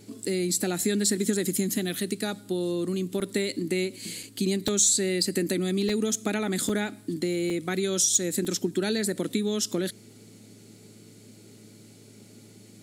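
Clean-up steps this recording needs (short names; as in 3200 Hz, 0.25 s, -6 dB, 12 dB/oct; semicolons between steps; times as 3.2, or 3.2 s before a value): clip repair -13 dBFS; de-hum 108.6 Hz, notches 4; interpolate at 3.2/4.23/4.68/5.89/6.69/7.5/8.45, 3.6 ms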